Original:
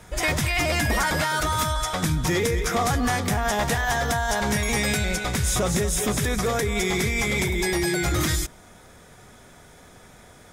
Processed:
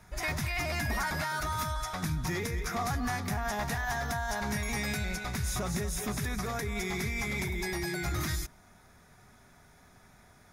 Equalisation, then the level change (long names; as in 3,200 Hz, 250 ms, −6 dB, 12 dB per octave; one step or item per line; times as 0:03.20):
thirty-one-band graphic EQ 315 Hz −5 dB, 500 Hz −11 dB, 3,150 Hz −8 dB, 8,000 Hz −9 dB
−8.0 dB